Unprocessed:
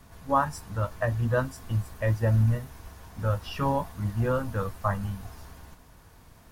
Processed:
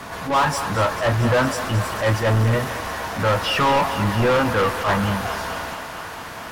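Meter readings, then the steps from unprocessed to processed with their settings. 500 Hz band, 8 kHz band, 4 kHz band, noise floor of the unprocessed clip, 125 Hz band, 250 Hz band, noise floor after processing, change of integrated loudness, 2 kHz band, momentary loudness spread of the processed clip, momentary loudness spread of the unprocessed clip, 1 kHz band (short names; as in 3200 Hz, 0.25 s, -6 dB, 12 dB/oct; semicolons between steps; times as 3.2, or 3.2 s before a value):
+9.5 dB, +15.0 dB, +19.5 dB, -54 dBFS, +4.0 dB, +9.0 dB, -34 dBFS, +7.5 dB, +14.0 dB, 11 LU, 14 LU, +10.5 dB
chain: overdrive pedal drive 33 dB, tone 2400 Hz, clips at -10 dBFS; thinning echo 0.224 s, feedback 82%, high-pass 390 Hz, level -11 dB; attack slew limiter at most 130 dB/s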